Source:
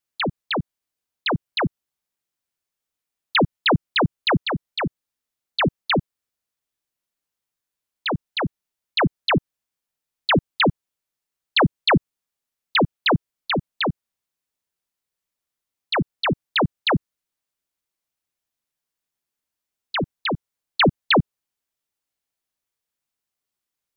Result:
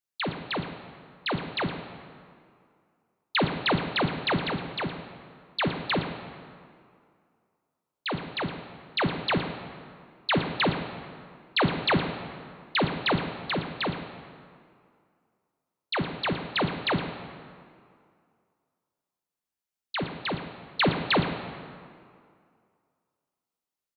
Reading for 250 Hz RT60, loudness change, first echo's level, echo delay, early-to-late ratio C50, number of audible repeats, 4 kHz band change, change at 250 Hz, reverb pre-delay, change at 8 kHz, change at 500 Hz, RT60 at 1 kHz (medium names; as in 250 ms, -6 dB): 2.2 s, -6.0 dB, -13.5 dB, 40 ms, 6.5 dB, 2, -6.0 dB, -6.0 dB, 6 ms, no reading, -5.5 dB, 2.3 s